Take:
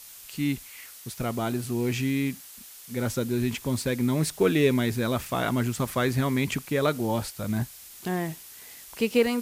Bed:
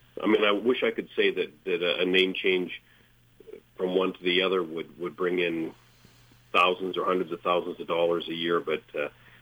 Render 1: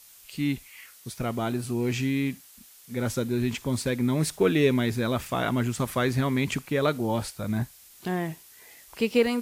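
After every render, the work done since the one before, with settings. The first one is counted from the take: noise print and reduce 6 dB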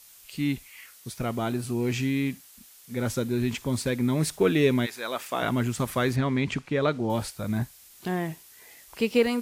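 4.85–5.41 s: high-pass 1 kHz -> 270 Hz; 6.16–7.10 s: distance through air 87 m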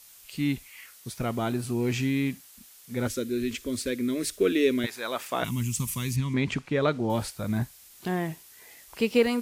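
3.07–4.84 s: static phaser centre 350 Hz, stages 4; 5.44–6.34 s: FFT filter 190 Hz 0 dB, 680 Hz -26 dB, 990 Hz -8 dB, 1.5 kHz -18 dB, 2.6 kHz +1 dB, 3.9 kHz -4 dB, 6.2 kHz +7 dB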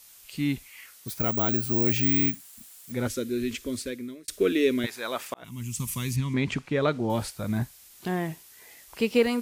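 1.08–2.92 s: careless resampling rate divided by 2×, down none, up zero stuff; 3.66–4.28 s: fade out; 5.34–5.93 s: fade in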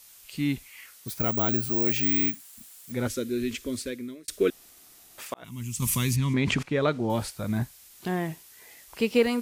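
1.69–2.49 s: high-pass 250 Hz 6 dB/octave; 4.50–5.18 s: room tone; 5.82–6.63 s: level flattener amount 70%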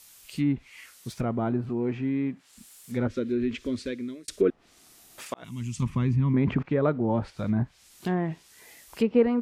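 low-pass that closes with the level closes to 1.3 kHz, closed at -23 dBFS; peaking EQ 200 Hz +3 dB 1.7 oct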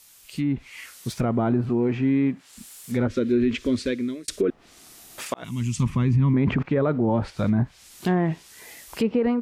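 peak limiter -20.5 dBFS, peak gain reduction 10.5 dB; level rider gain up to 7 dB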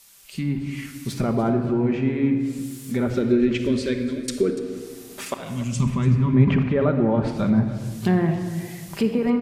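delay 290 ms -17 dB; simulated room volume 2700 m³, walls mixed, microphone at 1.2 m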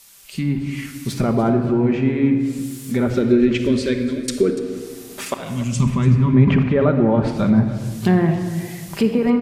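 trim +4 dB; peak limiter -3 dBFS, peak gain reduction 2 dB

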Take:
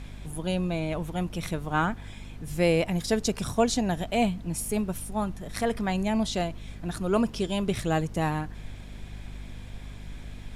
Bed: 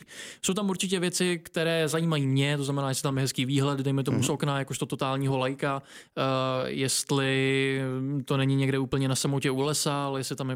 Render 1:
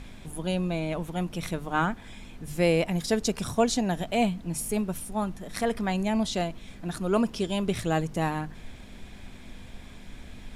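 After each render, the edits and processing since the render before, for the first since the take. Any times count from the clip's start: hum notches 50/100/150 Hz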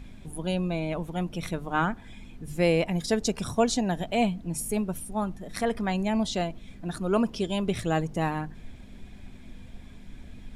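noise reduction 7 dB, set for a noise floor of -46 dBFS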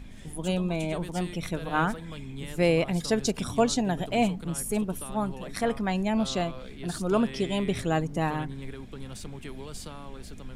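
add bed -15 dB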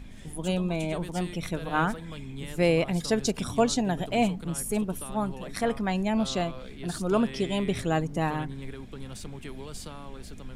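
no audible change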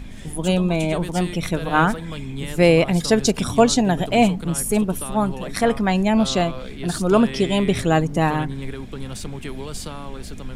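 trim +8.5 dB

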